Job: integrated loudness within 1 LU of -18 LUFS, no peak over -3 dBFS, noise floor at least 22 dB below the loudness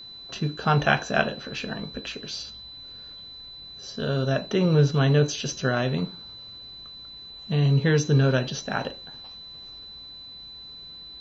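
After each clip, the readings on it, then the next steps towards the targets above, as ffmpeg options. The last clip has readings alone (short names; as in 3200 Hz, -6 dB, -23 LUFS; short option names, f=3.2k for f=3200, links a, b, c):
steady tone 4000 Hz; tone level -40 dBFS; loudness -24.5 LUFS; peak -5.5 dBFS; loudness target -18.0 LUFS
-> -af "bandreject=f=4k:w=30"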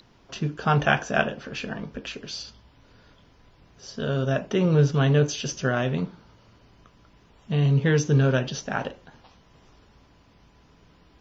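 steady tone none; loudness -24.5 LUFS; peak -5.5 dBFS; loudness target -18.0 LUFS
-> -af "volume=6.5dB,alimiter=limit=-3dB:level=0:latency=1"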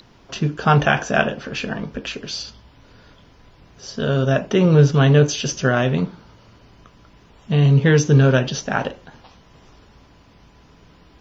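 loudness -18.5 LUFS; peak -3.0 dBFS; noise floor -51 dBFS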